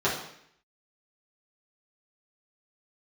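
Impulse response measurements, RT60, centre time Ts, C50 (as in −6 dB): 0.70 s, 36 ms, 5.0 dB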